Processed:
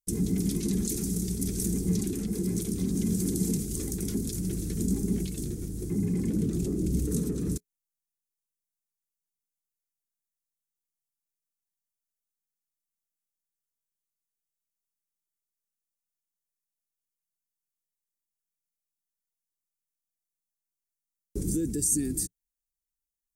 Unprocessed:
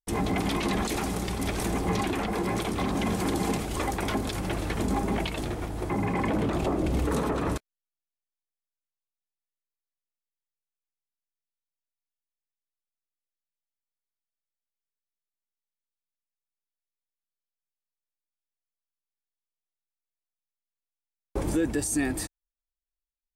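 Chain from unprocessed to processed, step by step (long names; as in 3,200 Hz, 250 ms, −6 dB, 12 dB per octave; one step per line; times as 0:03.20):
drawn EQ curve 110 Hz 0 dB, 180 Hz +7 dB, 280 Hz −1 dB, 420 Hz −2 dB, 610 Hz −24 dB, 950 Hz −29 dB, 1,500 Hz −19 dB, 3,000 Hz −15 dB, 6,200 Hz +6 dB, 10,000 Hz +8 dB
level −2 dB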